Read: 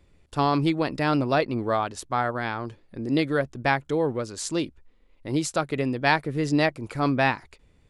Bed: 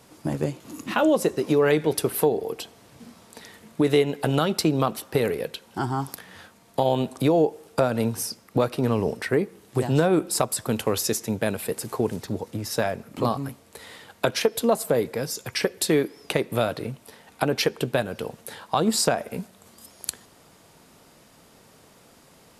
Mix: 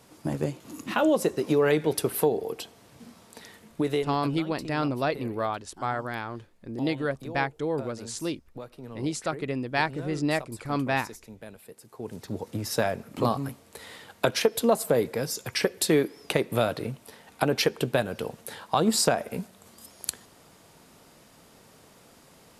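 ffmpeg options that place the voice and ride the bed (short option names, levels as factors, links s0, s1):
-filter_complex "[0:a]adelay=3700,volume=0.596[s0];[1:a]volume=5.96,afade=t=out:st=3.5:d=0.89:silence=0.149624,afade=t=in:st=11.94:d=0.63:silence=0.125893[s1];[s0][s1]amix=inputs=2:normalize=0"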